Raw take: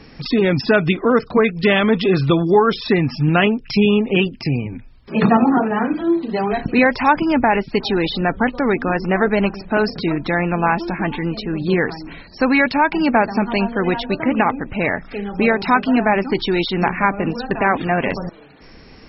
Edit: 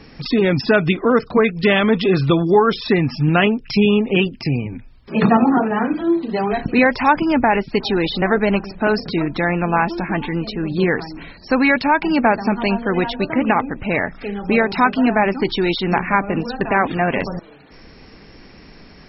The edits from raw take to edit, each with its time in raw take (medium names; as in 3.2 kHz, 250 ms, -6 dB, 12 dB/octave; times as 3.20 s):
8.22–9.12 s: delete